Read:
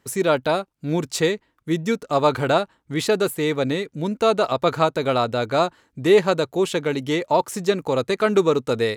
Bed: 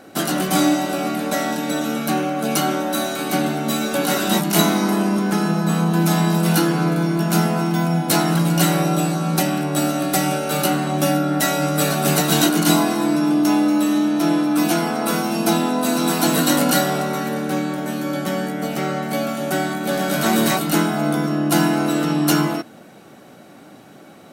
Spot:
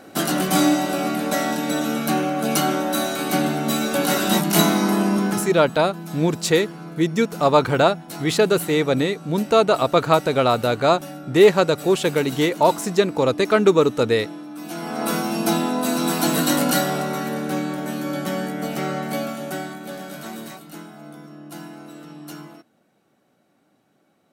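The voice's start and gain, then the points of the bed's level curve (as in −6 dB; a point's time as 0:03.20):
5.30 s, +2.5 dB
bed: 0:05.26 −0.5 dB
0:05.71 −17.5 dB
0:14.61 −17.5 dB
0:15.02 −2.5 dB
0:19.11 −2.5 dB
0:20.64 −20.5 dB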